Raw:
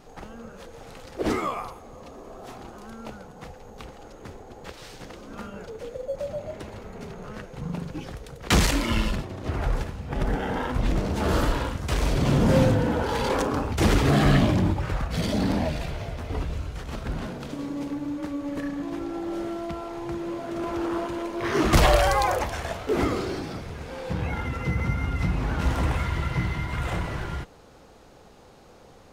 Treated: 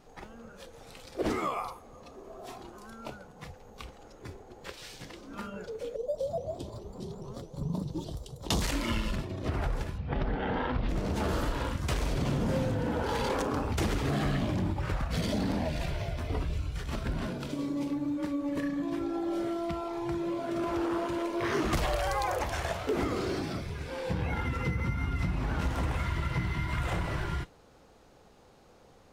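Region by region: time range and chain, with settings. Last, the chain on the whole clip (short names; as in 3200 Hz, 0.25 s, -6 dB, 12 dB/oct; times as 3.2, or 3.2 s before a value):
5.96–8.62 band shelf 1900 Hz -13 dB 1.2 oct + shaped vibrato saw up 4.8 Hz, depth 250 cents
9.98–10.89 LPF 4700 Hz 24 dB/oct + Doppler distortion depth 0.17 ms
whole clip: spectral noise reduction 7 dB; compressor 5:1, threshold -27 dBFS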